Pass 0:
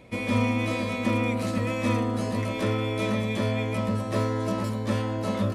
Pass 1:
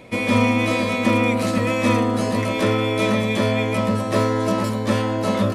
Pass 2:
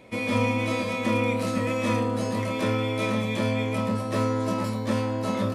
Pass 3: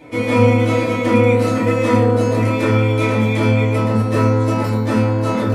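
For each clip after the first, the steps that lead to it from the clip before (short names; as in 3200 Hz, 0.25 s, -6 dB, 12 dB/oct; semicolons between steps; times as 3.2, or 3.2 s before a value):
low shelf 110 Hz -9.5 dB; gain +8.5 dB
flutter echo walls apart 4.6 m, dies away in 0.23 s; gain -7.5 dB
FDN reverb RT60 0.52 s, low-frequency decay 1×, high-frequency decay 0.25×, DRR -6.5 dB; gain +2.5 dB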